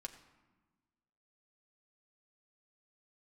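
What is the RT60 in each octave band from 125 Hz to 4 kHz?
1.7, 1.7, 1.2, 1.3, 1.1, 0.75 seconds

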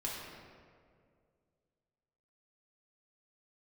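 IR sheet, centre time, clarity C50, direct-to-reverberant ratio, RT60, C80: 104 ms, −0.5 dB, −5.5 dB, 2.1 s, 1.5 dB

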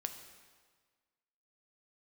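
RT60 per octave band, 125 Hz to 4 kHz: 1.6, 1.6, 1.6, 1.6, 1.4, 1.4 seconds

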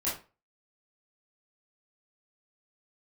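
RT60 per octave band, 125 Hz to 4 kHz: 0.35, 0.35, 0.35, 0.30, 0.30, 0.25 seconds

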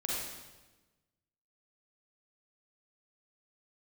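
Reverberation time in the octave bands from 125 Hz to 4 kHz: 1.5, 1.4, 1.2, 1.1, 1.1, 1.0 seconds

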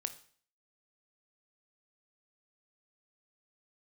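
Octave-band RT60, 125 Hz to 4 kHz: 0.50, 0.50, 0.50, 0.50, 0.50, 0.50 seconds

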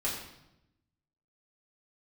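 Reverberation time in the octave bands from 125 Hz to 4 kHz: 1.3, 1.2, 0.90, 0.80, 0.75, 0.75 seconds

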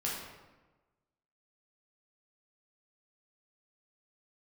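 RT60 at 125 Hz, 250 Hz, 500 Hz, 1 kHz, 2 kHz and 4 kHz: 1.3, 1.3, 1.2, 1.2, 1.0, 0.75 seconds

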